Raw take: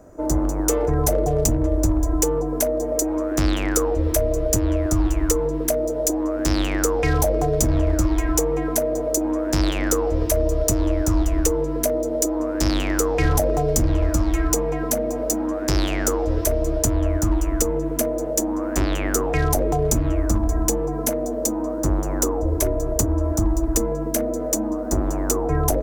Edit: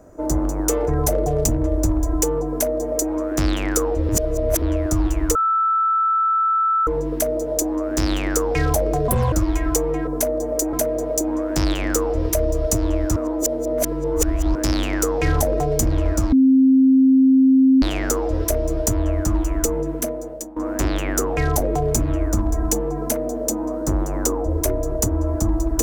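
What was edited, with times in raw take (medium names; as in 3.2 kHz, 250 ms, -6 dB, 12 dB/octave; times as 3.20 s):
2.47–3.13 s: copy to 8.70 s
4.09–4.62 s: reverse
5.35 s: add tone 1.32 kHz -15.5 dBFS 1.52 s
7.56–7.95 s: speed 161%
11.13–12.52 s: reverse
14.29–15.79 s: bleep 264 Hz -10 dBFS
17.82–18.53 s: fade out, to -18.5 dB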